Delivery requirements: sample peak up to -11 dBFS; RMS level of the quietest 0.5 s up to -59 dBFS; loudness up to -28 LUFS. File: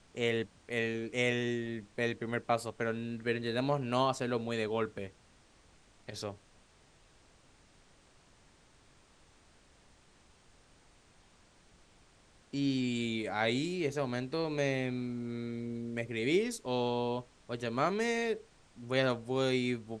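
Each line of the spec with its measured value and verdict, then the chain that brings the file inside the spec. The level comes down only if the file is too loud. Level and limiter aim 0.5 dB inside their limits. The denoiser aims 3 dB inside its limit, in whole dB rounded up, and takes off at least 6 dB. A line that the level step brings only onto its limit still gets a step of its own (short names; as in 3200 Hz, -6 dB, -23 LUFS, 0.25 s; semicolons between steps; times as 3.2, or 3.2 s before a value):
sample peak -14.5 dBFS: OK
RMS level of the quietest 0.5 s -63 dBFS: OK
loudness -34.0 LUFS: OK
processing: none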